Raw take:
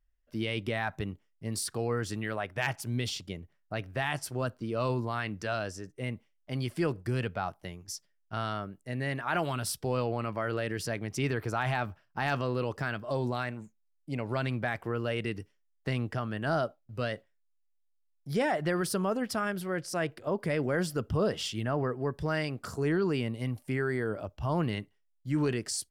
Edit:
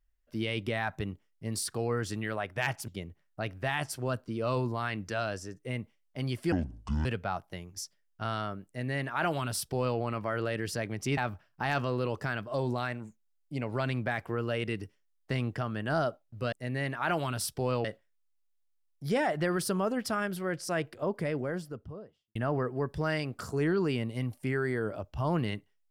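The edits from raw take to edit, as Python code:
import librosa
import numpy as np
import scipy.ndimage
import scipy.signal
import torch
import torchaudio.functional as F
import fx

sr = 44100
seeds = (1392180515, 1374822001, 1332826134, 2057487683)

y = fx.studio_fade_out(x, sr, start_s=20.1, length_s=1.5)
y = fx.edit(y, sr, fx.cut(start_s=2.88, length_s=0.33),
    fx.speed_span(start_s=6.85, length_s=0.32, speed=0.6),
    fx.duplicate(start_s=8.78, length_s=1.32, to_s=17.09),
    fx.cut(start_s=11.29, length_s=0.45), tone=tone)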